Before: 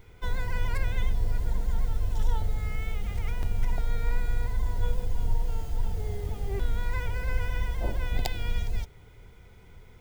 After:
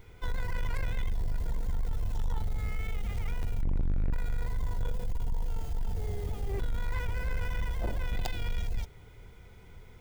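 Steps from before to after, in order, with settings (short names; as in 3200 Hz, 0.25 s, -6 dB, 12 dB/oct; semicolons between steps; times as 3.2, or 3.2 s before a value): 3.62–4.13 tilt -2.5 dB/oct; soft clip -24.5 dBFS, distortion -2 dB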